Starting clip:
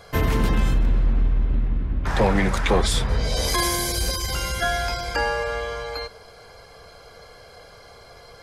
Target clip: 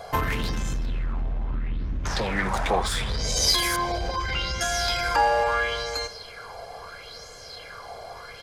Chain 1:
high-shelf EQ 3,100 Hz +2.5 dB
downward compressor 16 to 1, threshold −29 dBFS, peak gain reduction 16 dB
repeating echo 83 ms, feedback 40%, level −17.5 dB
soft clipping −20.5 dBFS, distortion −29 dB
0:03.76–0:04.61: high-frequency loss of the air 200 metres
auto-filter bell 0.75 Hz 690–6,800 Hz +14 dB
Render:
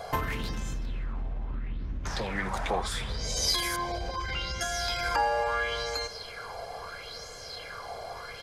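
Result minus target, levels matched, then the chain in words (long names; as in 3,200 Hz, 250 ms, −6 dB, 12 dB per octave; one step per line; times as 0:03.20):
downward compressor: peak gain reduction +7.5 dB
high-shelf EQ 3,100 Hz +2.5 dB
downward compressor 16 to 1, threshold −21 dBFS, peak gain reduction 8.5 dB
repeating echo 83 ms, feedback 40%, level −17.5 dB
soft clipping −20.5 dBFS, distortion −18 dB
0:03.76–0:04.61: high-frequency loss of the air 200 metres
auto-filter bell 0.75 Hz 690–6,800 Hz +14 dB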